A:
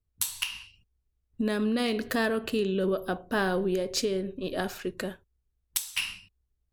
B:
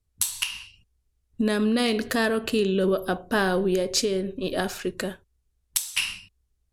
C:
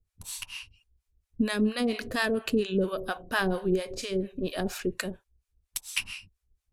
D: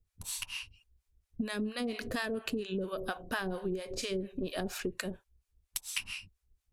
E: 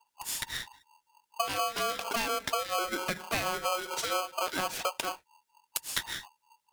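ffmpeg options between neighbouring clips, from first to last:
-filter_complex "[0:a]lowpass=11k,highshelf=f=6.3k:g=7.5,asplit=2[a][b];[b]alimiter=limit=-16.5dB:level=0:latency=1:release=407,volume=1dB[c];[a][c]amix=inputs=2:normalize=0,volume=-2dB"
-filter_complex "[0:a]lowshelf=f=61:g=7.5,acrossover=split=660[a][b];[a]aeval=exprs='val(0)*(1-1/2+1/2*cos(2*PI*4.3*n/s))':c=same[c];[b]aeval=exprs='val(0)*(1-1/2-1/2*cos(2*PI*4.3*n/s))':c=same[d];[c][d]amix=inputs=2:normalize=0,equalizer=f=2.4k:w=7.7:g=4"
-af "acompressor=threshold=-31dB:ratio=10"
-af "aeval=exprs='val(0)*sgn(sin(2*PI*920*n/s))':c=same,volume=3.5dB"

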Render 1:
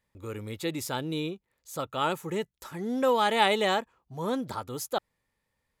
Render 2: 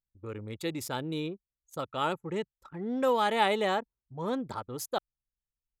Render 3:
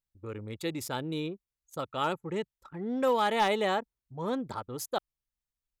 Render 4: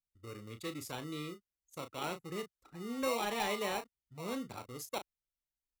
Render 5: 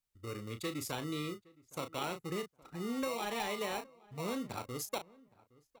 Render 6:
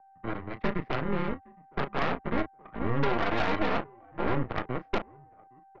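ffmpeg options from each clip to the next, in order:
-af "anlmdn=0.631,adynamicequalizer=threshold=0.00891:dfrequency=2200:dqfactor=0.7:tfrequency=2200:tqfactor=0.7:attack=5:release=100:ratio=0.375:range=3.5:mode=cutabove:tftype=highshelf,volume=-2dB"
-af "asoftclip=type=hard:threshold=-18.5dB"
-filter_complex "[0:a]acrossover=split=250|1100|6600[a][b][c][d];[b]acrusher=samples=27:mix=1:aa=0.000001[e];[a][e][c][d]amix=inputs=4:normalize=0,asplit=2[f][g];[g]adelay=34,volume=-9dB[h];[f][h]amix=inputs=2:normalize=0,volume=-7.5dB"
-filter_complex "[0:a]acompressor=threshold=-38dB:ratio=10,asplit=2[a][b];[b]adelay=816,lowpass=f=1.6k:p=1,volume=-23dB,asplit=2[c][d];[d]adelay=816,lowpass=f=1.6k:p=1,volume=0.22[e];[a][c][e]amix=inputs=3:normalize=0,volume=5dB"
-af "aeval=exprs='val(0)+0.000891*sin(2*PI*900*n/s)':c=same,highpass=f=220:t=q:w=0.5412,highpass=f=220:t=q:w=1.307,lowpass=f=2.1k:t=q:w=0.5176,lowpass=f=2.1k:t=q:w=0.7071,lowpass=f=2.1k:t=q:w=1.932,afreqshift=-120,aeval=exprs='0.0562*(cos(1*acos(clip(val(0)/0.0562,-1,1)))-cos(1*PI/2))+0.0224*(cos(6*acos(clip(val(0)/0.0562,-1,1)))-cos(6*PI/2))':c=same,volume=6.5dB"

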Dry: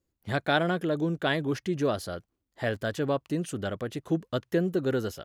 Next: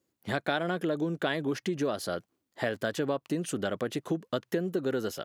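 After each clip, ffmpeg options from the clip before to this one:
-af "acompressor=threshold=-31dB:ratio=6,highpass=170,volume=5dB"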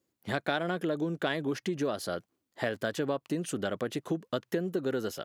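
-af "aeval=exprs='0.237*(cos(1*acos(clip(val(0)/0.237,-1,1)))-cos(1*PI/2))+0.0106*(cos(3*acos(clip(val(0)/0.237,-1,1)))-cos(3*PI/2))':c=same"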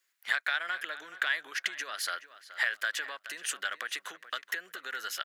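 -filter_complex "[0:a]acompressor=threshold=-32dB:ratio=6,highpass=f=1.7k:t=q:w=2.3,asplit=2[a][b];[b]adelay=425,lowpass=f=3.3k:p=1,volume=-14dB,asplit=2[c][d];[d]adelay=425,lowpass=f=3.3k:p=1,volume=0.29,asplit=2[e][f];[f]adelay=425,lowpass=f=3.3k:p=1,volume=0.29[g];[a][c][e][g]amix=inputs=4:normalize=0,volume=7dB"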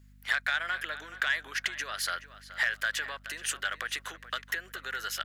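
-af "asoftclip=type=tanh:threshold=-17dB,aeval=exprs='val(0)+0.00141*(sin(2*PI*50*n/s)+sin(2*PI*2*50*n/s)/2+sin(2*PI*3*50*n/s)/3+sin(2*PI*4*50*n/s)/4+sin(2*PI*5*50*n/s)/5)':c=same,volume=2dB"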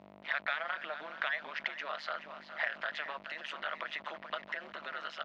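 -af "aeval=exprs='val(0)+0.5*0.0112*sgn(val(0))':c=same,tremolo=f=150:d=1,highpass=270,equalizer=f=270:t=q:w=4:g=-4,equalizer=f=420:t=q:w=4:g=-5,equalizer=f=640:t=q:w=4:g=10,equalizer=f=980:t=q:w=4:g=4,equalizer=f=1.6k:t=q:w=4:g=-6,equalizer=f=3.1k:t=q:w=4:g=-3,lowpass=f=3.4k:w=0.5412,lowpass=f=3.4k:w=1.3066"

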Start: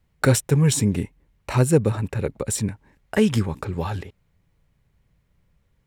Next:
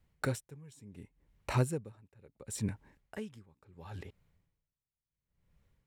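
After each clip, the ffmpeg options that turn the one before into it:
-af "aeval=exprs='val(0)*pow(10,-31*(0.5-0.5*cos(2*PI*0.71*n/s))/20)':c=same,volume=-5dB"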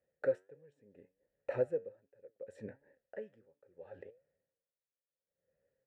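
-filter_complex "[0:a]flanger=delay=6.9:depth=4.1:regen=81:speed=1.4:shape=sinusoidal,asplit=3[a][b][c];[a]bandpass=f=530:t=q:w=8,volume=0dB[d];[b]bandpass=f=1.84k:t=q:w=8,volume=-6dB[e];[c]bandpass=f=2.48k:t=q:w=8,volume=-9dB[f];[d][e][f]amix=inputs=3:normalize=0,highshelf=f=1.8k:t=q:w=1.5:g=-11.5,volume=14dB"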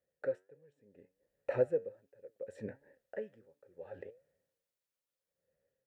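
-af "dynaudnorm=f=470:g=5:m=7dB,volume=-3.5dB"

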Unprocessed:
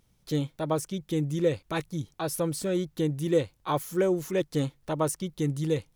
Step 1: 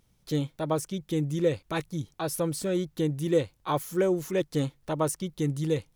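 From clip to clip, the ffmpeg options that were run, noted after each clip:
-af anull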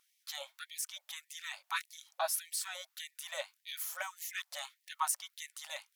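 -af "equalizer=f=14k:t=o:w=0.3:g=4.5,afftfilt=real='re*gte(b*sr/1024,540*pow(1800/540,0.5+0.5*sin(2*PI*1.7*pts/sr)))':imag='im*gte(b*sr/1024,540*pow(1800/540,0.5+0.5*sin(2*PI*1.7*pts/sr)))':win_size=1024:overlap=0.75"

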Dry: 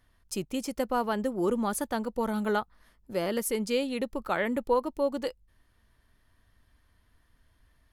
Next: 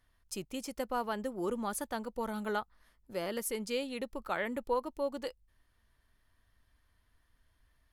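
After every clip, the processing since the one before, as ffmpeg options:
-af "equalizer=f=200:t=o:w=2.9:g=-4,volume=-4.5dB"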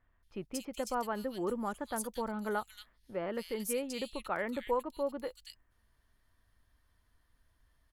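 -filter_complex "[0:a]acrossover=split=2600[a][b];[b]adelay=230[c];[a][c]amix=inputs=2:normalize=0"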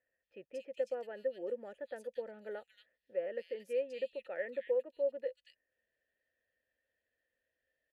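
-filter_complex "[0:a]asplit=3[a][b][c];[a]bandpass=f=530:t=q:w=8,volume=0dB[d];[b]bandpass=f=1.84k:t=q:w=8,volume=-6dB[e];[c]bandpass=f=2.48k:t=q:w=8,volume=-9dB[f];[d][e][f]amix=inputs=3:normalize=0,volume=4.5dB"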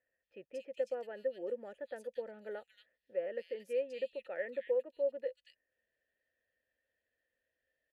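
-af anull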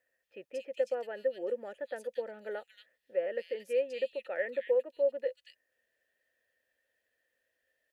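-af "lowshelf=f=250:g=-9.5,volume=6.5dB"

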